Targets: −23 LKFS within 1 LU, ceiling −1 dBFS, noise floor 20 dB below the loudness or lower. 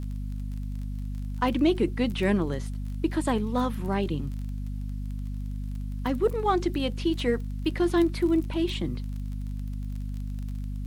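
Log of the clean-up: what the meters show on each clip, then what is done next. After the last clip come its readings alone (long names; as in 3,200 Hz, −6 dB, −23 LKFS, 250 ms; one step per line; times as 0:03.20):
crackle rate 24 per second; mains hum 50 Hz; hum harmonics up to 250 Hz; level of the hum −30 dBFS; integrated loudness −29.0 LKFS; sample peak −12.5 dBFS; target loudness −23.0 LKFS
→ click removal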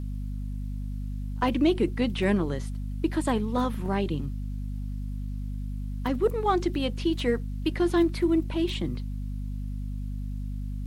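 crackle rate 0.18 per second; mains hum 50 Hz; hum harmonics up to 250 Hz; level of the hum −30 dBFS
→ mains-hum notches 50/100/150/200/250 Hz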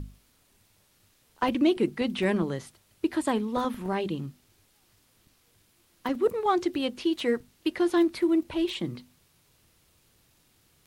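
mains hum none found; integrated loudness −28.0 LKFS; sample peak −13.0 dBFS; target loudness −23.0 LKFS
→ level +5 dB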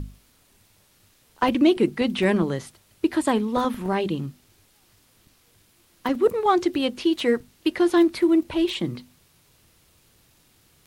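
integrated loudness −23.0 LKFS; sample peak −8.0 dBFS; background noise floor −61 dBFS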